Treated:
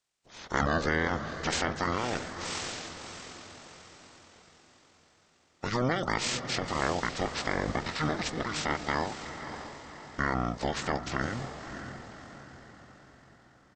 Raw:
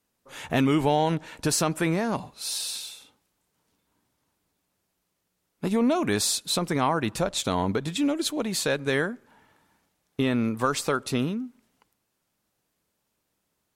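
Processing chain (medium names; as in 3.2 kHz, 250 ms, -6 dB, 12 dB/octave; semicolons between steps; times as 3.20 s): spectral peaks clipped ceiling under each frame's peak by 24 dB; echo that smears into a reverb 581 ms, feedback 49%, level -9 dB; pitch shift -11 st; trim -5 dB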